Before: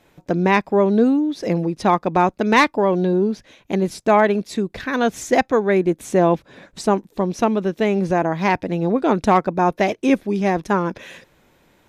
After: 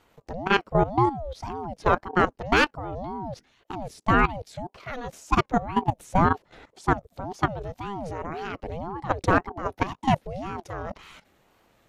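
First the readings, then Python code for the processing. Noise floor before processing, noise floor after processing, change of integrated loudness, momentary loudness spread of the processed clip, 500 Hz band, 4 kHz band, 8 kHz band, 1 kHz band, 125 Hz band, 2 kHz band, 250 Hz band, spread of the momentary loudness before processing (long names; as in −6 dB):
−59 dBFS, −67 dBFS, −7.5 dB, 15 LU, −11.0 dB, −3.5 dB, −10.5 dB, −5.0 dB, −4.5 dB, −4.0 dB, −11.0 dB, 8 LU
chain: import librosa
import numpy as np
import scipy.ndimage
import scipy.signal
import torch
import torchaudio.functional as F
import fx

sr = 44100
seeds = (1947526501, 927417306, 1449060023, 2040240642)

y = fx.level_steps(x, sr, step_db=15)
y = fx.ring_lfo(y, sr, carrier_hz=420.0, swing_pct=45, hz=1.9)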